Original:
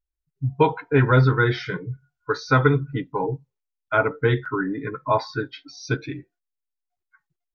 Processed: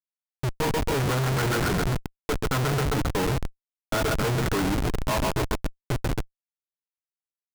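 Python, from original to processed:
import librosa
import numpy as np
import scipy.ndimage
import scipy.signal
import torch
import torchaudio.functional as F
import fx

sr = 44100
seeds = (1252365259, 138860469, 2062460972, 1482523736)

y = fx.echo_thinned(x, sr, ms=132, feedback_pct=84, hz=750.0, wet_db=-3.5)
y = fx.schmitt(y, sr, flips_db=-23.5)
y = y * 10.0 ** (-1.0 / 20.0)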